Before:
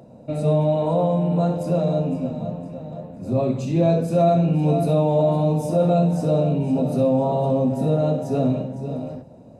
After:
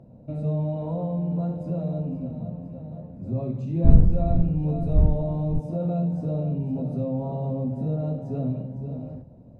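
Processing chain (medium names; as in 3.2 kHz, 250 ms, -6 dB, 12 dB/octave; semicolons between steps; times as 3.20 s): 3.84–5.58 s: wind noise 150 Hz -18 dBFS; RIAA curve playback; in parallel at -1.5 dB: compression, threshold -20 dBFS, peak gain reduction 26.5 dB; on the sum: trim -16.5 dB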